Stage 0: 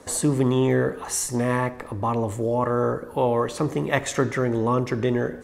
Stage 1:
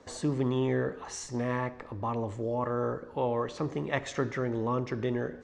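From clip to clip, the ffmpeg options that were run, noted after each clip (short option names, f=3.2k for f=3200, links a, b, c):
-af "lowpass=f=6.2k:w=0.5412,lowpass=f=6.2k:w=1.3066,volume=-8dB"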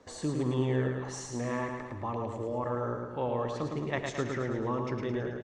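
-af "aecho=1:1:109|218|327|436|545|654|763:0.596|0.322|0.174|0.0938|0.0506|0.0274|0.0148,volume=-3dB"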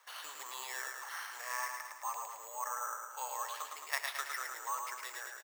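-af "acrusher=samples=6:mix=1:aa=0.000001,highpass=f=980:w=0.5412,highpass=f=980:w=1.3066,volume=1.5dB"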